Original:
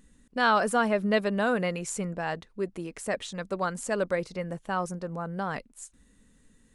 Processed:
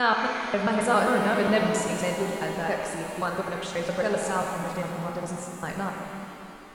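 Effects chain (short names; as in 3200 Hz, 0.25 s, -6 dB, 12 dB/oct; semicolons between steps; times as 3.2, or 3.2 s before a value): slices in reverse order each 0.134 s, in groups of 4; shimmer reverb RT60 2.9 s, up +7 st, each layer -8 dB, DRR 1 dB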